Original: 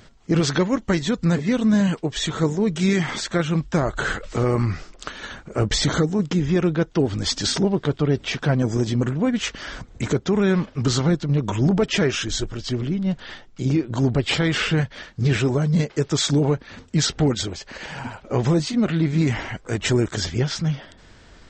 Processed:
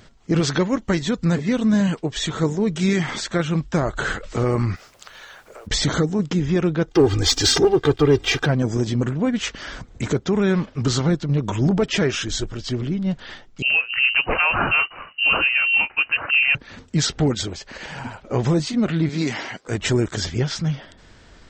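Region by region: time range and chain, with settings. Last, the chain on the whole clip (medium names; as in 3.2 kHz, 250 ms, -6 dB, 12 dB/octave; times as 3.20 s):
4.75–5.66 s: high-pass 480 Hz 24 dB/octave + compression, threshold -38 dBFS + added noise pink -57 dBFS
6.88–8.46 s: comb 2.5 ms, depth 89% + waveshaping leveller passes 1
13.62–16.55 s: dynamic bell 1.5 kHz, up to +6 dB, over -38 dBFS, Q 0.85 + frequency inversion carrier 2.9 kHz
19.09–19.68 s: high-pass 220 Hz + peaking EQ 4.7 kHz +8 dB 0.81 oct
whole clip: none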